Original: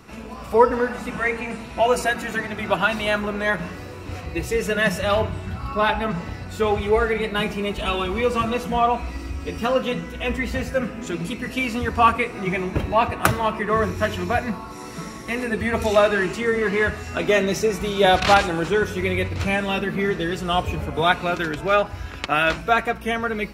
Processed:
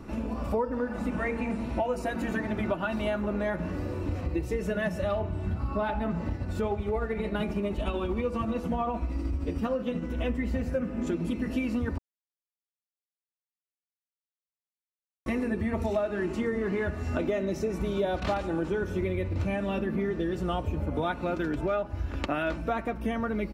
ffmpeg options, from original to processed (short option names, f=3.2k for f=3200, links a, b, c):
-filter_complex "[0:a]asettb=1/sr,asplit=3[a][b][c];[a]atrim=end=6.354[d];[b]atrim=start=6.35:end=10.19,asetpts=PTS-STARTPTS,afade=t=in:d=0.004:c=qsin,afade=t=out:st=3.836:d=0.004:c=qsin,tremolo=f=13:d=0.4[e];[c]atrim=start=10.186[f];[d][e]acrossfade=d=0.004:c1=hsin:c2=qsin[g];[g][f]acrossfade=d=0.004:c1=qsin:c2=hsin,asplit=3[h][i][j];[h]atrim=end=11.98,asetpts=PTS-STARTPTS,afade=t=out:st=11.976:d=0.004:c=hsin[k];[i]atrim=start=11.98:end=15.26,asetpts=PTS-STARTPTS,volume=0[l];[j]atrim=start=15.26,asetpts=PTS-STARTPTS,afade=t=in:d=0.004:c=hsin[m];[k][l][m]concat=n=3:v=0:a=1,tiltshelf=f=970:g=7.5,aecho=1:1:3.4:0.35,acompressor=threshold=-25dB:ratio=6,volume=-1.5dB"